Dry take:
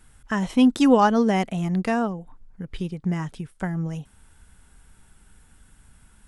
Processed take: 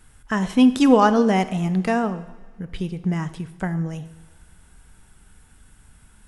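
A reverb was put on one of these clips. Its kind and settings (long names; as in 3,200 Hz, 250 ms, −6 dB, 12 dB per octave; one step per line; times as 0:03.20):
coupled-rooms reverb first 0.93 s, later 3.2 s, from −19 dB, DRR 11 dB
level +2 dB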